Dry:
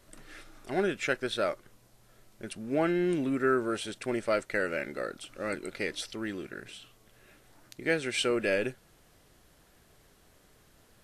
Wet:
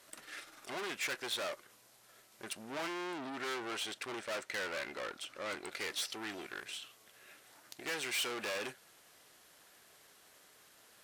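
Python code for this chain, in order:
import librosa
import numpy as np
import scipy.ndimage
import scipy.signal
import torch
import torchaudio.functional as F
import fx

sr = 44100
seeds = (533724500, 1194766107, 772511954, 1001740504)

y = fx.high_shelf(x, sr, hz=6800.0, db=-10.0, at=(3.07, 5.72))
y = fx.tube_stage(y, sr, drive_db=38.0, bias=0.6)
y = fx.highpass(y, sr, hz=1000.0, slope=6)
y = y * librosa.db_to_amplitude(6.5)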